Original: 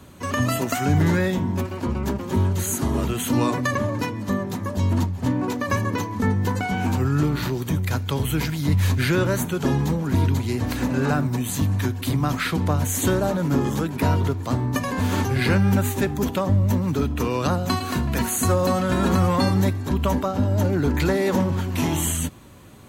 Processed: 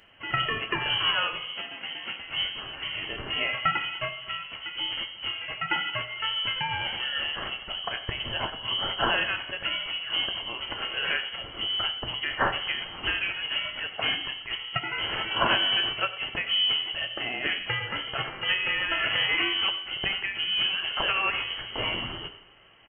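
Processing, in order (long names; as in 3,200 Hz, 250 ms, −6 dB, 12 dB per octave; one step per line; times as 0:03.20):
tilt shelving filter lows −9.5 dB, about 1,300 Hz
slap from a distant wall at 16 metres, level −16 dB
voice inversion scrambler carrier 3,100 Hz
0:01.47–0:02.20: low shelf with overshoot 110 Hz −12.5 dB, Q 1.5
convolution reverb RT60 1.0 s, pre-delay 4 ms, DRR 6 dB
expander for the loud parts 1.5 to 1, over −32 dBFS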